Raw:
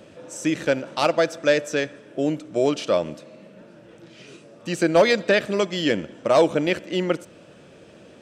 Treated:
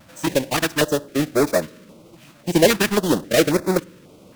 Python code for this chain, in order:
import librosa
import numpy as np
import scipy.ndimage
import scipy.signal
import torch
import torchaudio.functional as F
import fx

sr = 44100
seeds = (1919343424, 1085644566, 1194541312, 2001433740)

p1 = fx.halfwave_hold(x, sr)
p2 = p1 + fx.echo_filtered(p1, sr, ms=103, feedback_pct=77, hz=1700.0, wet_db=-21.5, dry=0)
p3 = fx.stretch_vocoder(p2, sr, factor=0.53)
p4 = fx.vibrato(p3, sr, rate_hz=1.4, depth_cents=36.0)
p5 = np.sign(p4) * np.maximum(np.abs(p4) - 10.0 ** (-30.0 / 20.0), 0.0)
p6 = p4 + (p5 * 10.0 ** (-6.0 / 20.0))
p7 = fx.filter_held_notch(p6, sr, hz=3.7, low_hz=420.0, high_hz=3000.0)
y = p7 * 10.0 ** (-2.0 / 20.0)